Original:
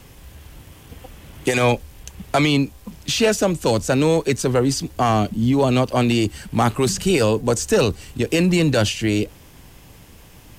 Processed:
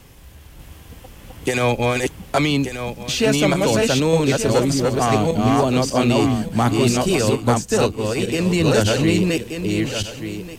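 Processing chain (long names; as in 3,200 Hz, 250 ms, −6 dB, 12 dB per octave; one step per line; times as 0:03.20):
feedback delay that plays each chunk backwards 590 ms, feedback 40%, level −1 dB
0:03.03–0:03.57: floating-point word with a short mantissa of 6 bits
0:07.21–0:08.46: expander for the loud parts 1.5 to 1, over −23 dBFS
level −1.5 dB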